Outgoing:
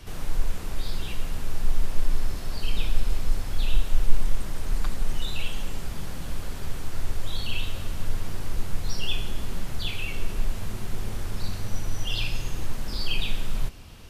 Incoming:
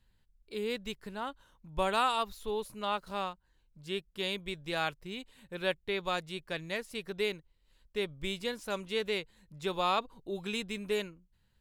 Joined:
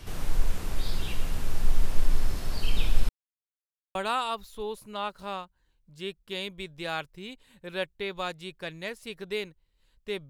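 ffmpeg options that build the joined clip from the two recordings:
-filter_complex "[0:a]apad=whole_dur=10.29,atrim=end=10.29,asplit=2[s0][s1];[s0]atrim=end=3.09,asetpts=PTS-STARTPTS,afade=t=out:st=3.086:d=0.004:c=hsin[s2];[s1]atrim=start=3.09:end=3.95,asetpts=PTS-STARTPTS,volume=0[s3];[1:a]atrim=start=1.83:end=8.17,asetpts=PTS-STARTPTS,afade=t=in:d=0.004:c=hsin[s4];[s2][s3][s4]concat=n=3:v=0:a=1"

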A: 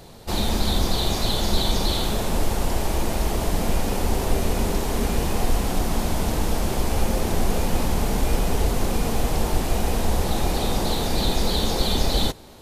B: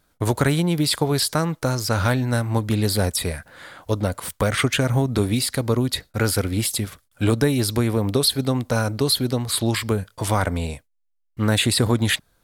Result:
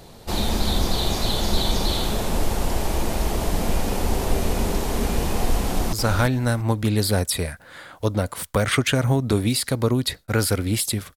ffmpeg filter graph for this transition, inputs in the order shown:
-filter_complex "[0:a]apad=whole_dur=11.16,atrim=end=11.16,atrim=end=5.932[s0];[1:a]atrim=start=1.788:end=7.02[s1];[s0][s1]acrossfade=d=0.004:c1=hsin:c2=hsin,asplit=2[s2][s3];[s3]afade=t=in:st=5.64:d=0.01,afade=t=out:st=5.93:d=0.01,aecho=0:1:340|680|1020:0.501187|0.100237|0.0200475[s4];[s2][s4]amix=inputs=2:normalize=0"

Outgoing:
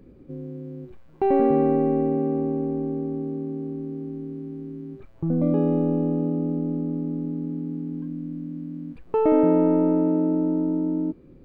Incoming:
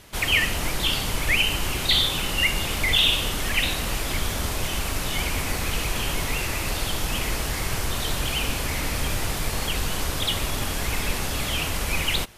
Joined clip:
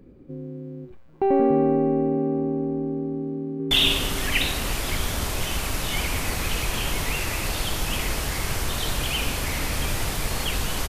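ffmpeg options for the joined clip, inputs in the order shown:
-filter_complex "[0:a]apad=whole_dur=10.88,atrim=end=10.88,atrim=end=3.712[s0];[1:a]atrim=start=2.928:end=10.1[s1];[s0][s1]acrossfade=d=0.004:c1=hsin:c2=hsin,asplit=2[s2][s3];[s3]afade=t=in:st=3.34:d=0.01,afade=t=out:st=3.71:d=0.01,aecho=0:1:250|500|750|1000|1250|1500|1750|2000|2250|2500:0.707946|0.460165|0.299107|0.19442|0.126373|0.0821423|0.0533925|0.0347051|0.0225583|0.0146629[s4];[s2][s4]amix=inputs=2:normalize=0"

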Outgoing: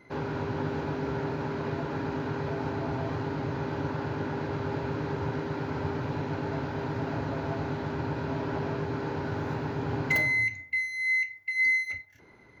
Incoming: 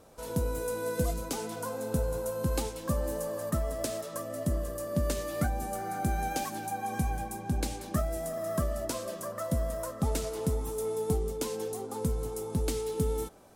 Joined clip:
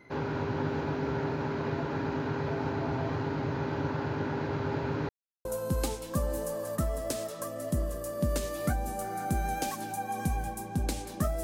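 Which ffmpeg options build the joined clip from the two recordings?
-filter_complex "[0:a]apad=whole_dur=11.43,atrim=end=11.43,asplit=2[s0][s1];[s0]atrim=end=5.09,asetpts=PTS-STARTPTS,afade=t=out:st=5.086:d=0.004:c=hsin[s2];[s1]atrim=start=5.09:end=5.45,asetpts=PTS-STARTPTS,volume=0[s3];[1:a]atrim=start=2.19:end=8.17,asetpts=PTS-STARTPTS,afade=t=in:d=0.004:c=hsin[s4];[s2][s3][s4]concat=n=3:v=0:a=1"

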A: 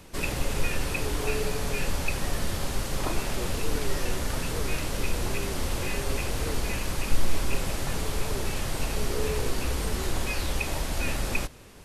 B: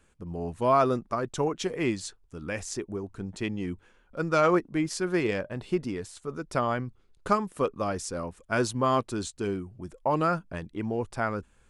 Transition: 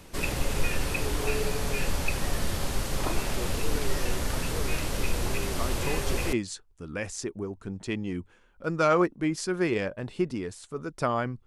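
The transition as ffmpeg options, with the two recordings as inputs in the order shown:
-filter_complex "[1:a]asplit=2[s0][s1];[0:a]apad=whole_dur=11.46,atrim=end=11.46,atrim=end=6.332[s2];[s1]atrim=start=1.858:end=6.99[s3];[s0]atrim=start=1.06:end=1.86,asetpts=PTS-STARTPTS,volume=0.501,afade=t=in:d=0.004:c=hsin,afade=t=out:st=0.796:d=0.004:c=hsin,adelay=243873S[s4];[s2][s3]acrossfade=d=0.004:c1=hsin:c2=hsin[s5];[s5][s4]amix=inputs=2:normalize=0"

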